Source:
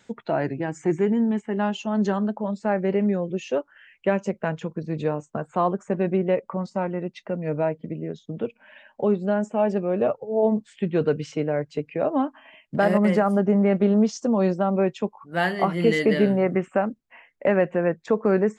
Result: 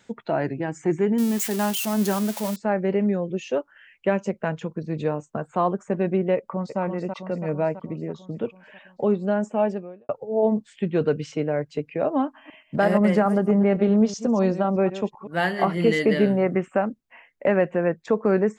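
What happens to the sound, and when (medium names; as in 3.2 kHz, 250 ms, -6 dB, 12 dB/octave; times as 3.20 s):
1.18–2.56 s: zero-crossing glitches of -19 dBFS
6.36–6.80 s: echo throw 330 ms, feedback 65%, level -6 dB
9.64–10.09 s: fade out quadratic
12.25–15.88 s: chunks repeated in reverse 126 ms, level -13 dB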